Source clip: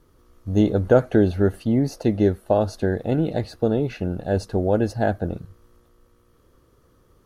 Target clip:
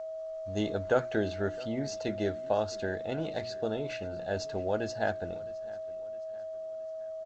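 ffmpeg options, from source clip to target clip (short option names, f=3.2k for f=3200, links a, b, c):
-af "bandreject=f=60:t=h:w=6,bandreject=f=120:t=h:w=6,bandreject=f=180:t=h:w=6,bandreject=f=240:t=h:w=6,bandreject=f=300:t=h:w=6,bandreject=f=360:t=h:w=6,aeval=exprs='val(0)+0.0447*sin(2*PI*640*n/s)':c=same,tiltshelf=f=700:g=-7.5,aecho=1:1:662|1324|1986:0.0891|0.041|0.0189,volume=-8.5dB" -ar 16000 -c:a g722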